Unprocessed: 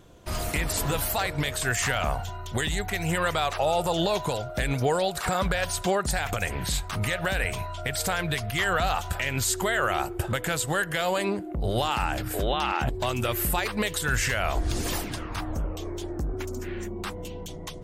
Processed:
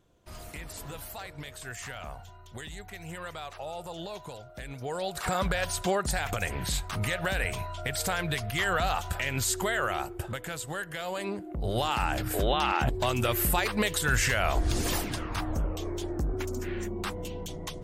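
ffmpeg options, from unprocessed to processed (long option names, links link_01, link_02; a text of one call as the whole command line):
ffmpeg -i in.wav -af "volume=6.5dB,afade=type=in:start_time=4.81:duration=0.51:silence=0.266073,afade=type=out:start_time=9.58:duration=0.87:silence=0.473151,afade=type=in:start_time=11.06:duration=1.26:silence=0.354813" out.wav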